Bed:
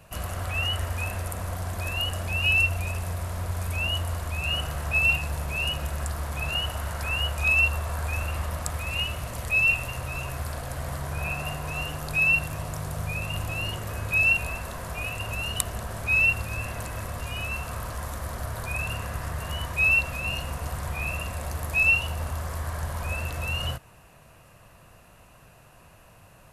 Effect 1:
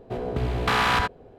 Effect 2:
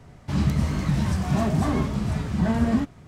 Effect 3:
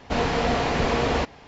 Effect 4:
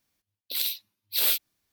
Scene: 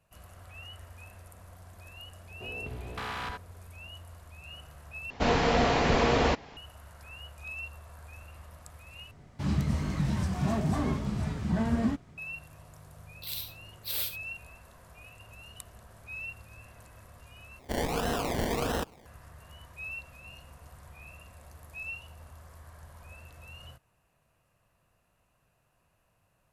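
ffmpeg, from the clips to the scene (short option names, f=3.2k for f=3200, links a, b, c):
-filter_complex "[3:a]asplit=2[a][b];[0:a]volume=-19dB[c];[4:a]aecho=1:1:70:0.299[d];[b]acrusher=samples=27:mix=1:aa=0.000001:lfo=1:lforange=16.2:lforate=1.5[e];[c]asplit=4[f][g][h][i];[f]atrim=end=5.104[j];[a]atrim=end=1.47,asetpts=PTS-STARTPTS,volume=-1.5dB[k];[g]atrim=start=6.566:end=9.114[l];[2:a]atrim=end=3.07,asetpts=PTS-STARTPTS,volume=-6dB[m];[h]atrim=start=12.176:end=17.594[n];[e]atrim=end=1.47,asetpts=PTS-STARTPTS,volume=-7.5dB[o];[i]atrim=start=19.056[p];[1:a]atrim=end=1.38,asetpts=PTS-STARTPTS,volume=-15dB,afade=t=in:d=0.004:c=hsin,afade=t=out:st=1.376:d=0.004:c=hsin,adelay=2300[q];[d]atrim=end=1.72,asetpts=PTS-STARTPTS,volume=-9.5dB,afade=t=in:d=0.004:c=hsin,afade=t=out:st=1.716:d=0.004:c=hsin,adelay=12720[r];[j][k]acrossfade=d=0.004:c1=hsin:c2=hsin[s];[s][l]acrossfade=d=0.004:c1=hsin:c2=hsin[t];[t][m]acrossfade=d=0.004:c1=hsin:c2=hsin[u];[u][n]acrossfade=d=0.004:c1=hsin:c2=hsin[v];[v][o]acrossfade=d=0.004:c1=hsin:c2=hsin[w];[w][p]acrossfade=d=0.004:c1=hsin:c2=hsin[x];[x][q][r]amix=inputs=3:normalize=0"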